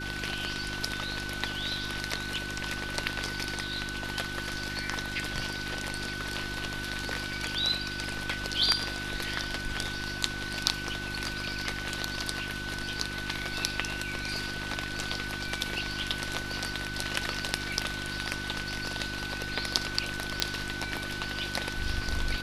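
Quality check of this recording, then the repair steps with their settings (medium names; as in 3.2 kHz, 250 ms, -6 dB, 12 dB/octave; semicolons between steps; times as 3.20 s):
hum 50 Hz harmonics 7 -40 dBFS
whine 1.5 kHz -37 dBFS
20.40 s: pop -8 dBFS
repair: de-click; de-hum 50 Hz, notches 7; band-stop 1.5 kHz, Q 30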